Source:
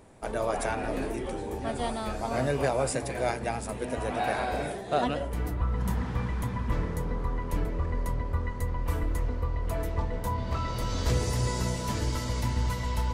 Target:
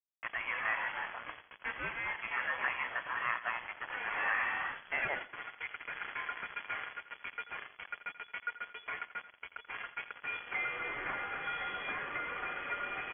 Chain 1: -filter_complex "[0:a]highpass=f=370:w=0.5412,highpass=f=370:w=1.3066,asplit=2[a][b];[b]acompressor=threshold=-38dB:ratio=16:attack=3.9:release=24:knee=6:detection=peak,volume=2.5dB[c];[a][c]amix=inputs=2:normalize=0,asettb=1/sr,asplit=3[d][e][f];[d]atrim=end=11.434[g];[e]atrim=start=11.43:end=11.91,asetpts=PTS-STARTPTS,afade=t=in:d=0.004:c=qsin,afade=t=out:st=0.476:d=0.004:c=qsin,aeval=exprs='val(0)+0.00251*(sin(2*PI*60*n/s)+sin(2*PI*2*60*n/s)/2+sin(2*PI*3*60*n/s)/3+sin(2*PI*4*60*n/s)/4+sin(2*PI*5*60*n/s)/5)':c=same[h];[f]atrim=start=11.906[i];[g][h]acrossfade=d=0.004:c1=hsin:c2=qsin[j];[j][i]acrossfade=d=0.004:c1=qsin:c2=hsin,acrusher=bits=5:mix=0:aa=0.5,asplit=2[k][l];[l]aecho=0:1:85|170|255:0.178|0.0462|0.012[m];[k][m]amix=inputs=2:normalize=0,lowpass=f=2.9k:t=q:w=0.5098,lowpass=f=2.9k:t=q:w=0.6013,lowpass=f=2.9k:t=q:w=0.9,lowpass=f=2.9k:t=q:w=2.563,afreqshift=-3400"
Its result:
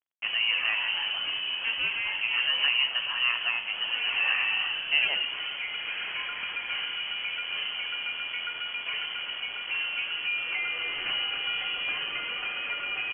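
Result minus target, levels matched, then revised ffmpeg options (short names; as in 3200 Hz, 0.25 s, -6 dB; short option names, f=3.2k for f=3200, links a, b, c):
1000 Hz band -11.0 dB
-filter_complex "[0:a]highpass=f=1.4k:w=0.5412,highpass=f=1.4k:w=1.3066,asplit=2[a][b];[b]acompressor=threshold=-38dB:ratio=16:attack=3.9:release=24:knee=6:detection=peak,volume=2.5dB[c];[a][c]amix=inputs=2:normalize=0,asettb=1/sr,asplit=3[d][e][f];[d]atrim=end=11.434[g];[e]atrim=start=11.43:end=11.91,asetpts=PTS-STARTPTS,afade=t=in:d=0.004:c=qsin,afade=t=out:st=0.476:d=0.004:c=qsin,aeval=exprs='val(0)+0.00251*(sin(2*PI*60*n/s)+sin(2*PI*2*60*n/s)/2+sin(2*PI*3*60*n/s)/3+sin(2*PI*4*60*n/s)/4+sin(2*PI*5*60*n/s)/5)':c=same[h];[f]atrim=start=11.906[i];[g][h]acrossfade=d=0.004:c1=hsin:c2=qsin[j];[j][i]acrossfade=d=0.004:c1=qsin:c2=hsin,acrusher=bits=5:mix=0:aa=0.5,asplit=2[k][l];[l]aecho=0:1:85|170|255:0.178|0.0462|0.012[m];[k][m]amix=inputs=2:normalize=0,lowpass=f=2.9k:t=q:w=0.5098,lowpass=f=2.9k:t=q:w=0.6013,lowpass=f=2.9k:t=q:w=0.9,lowpass=f=2.9k:t=q:w=2.563,afreqshift=-3400"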